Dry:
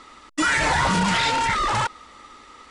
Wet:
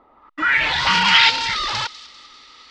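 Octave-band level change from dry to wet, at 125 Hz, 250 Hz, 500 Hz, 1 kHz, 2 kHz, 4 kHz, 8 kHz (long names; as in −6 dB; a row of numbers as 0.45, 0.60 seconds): −7.5, −7.0, −6.5, 0.0, +5.5, +10.0, −3.5 decibels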